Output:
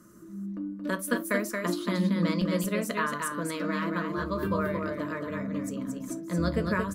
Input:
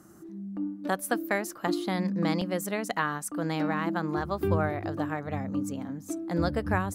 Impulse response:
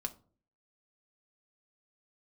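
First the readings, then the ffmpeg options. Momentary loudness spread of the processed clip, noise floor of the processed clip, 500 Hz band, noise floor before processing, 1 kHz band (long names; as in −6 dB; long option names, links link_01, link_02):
8 LU, −42 dBFS, 0.0 dB, −48 dBFS, −2.0 dB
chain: -filter_complex "[0:a]asuperstop=centerf=780:order=8:qfactor=3.4,aecho=1:1:226:0.596[link_01];[1:a]atrim=start_sample=2205,atrim=end_sample=3528[link_02];[link_01][link_02]afir=irnorm=-1:irlink=0"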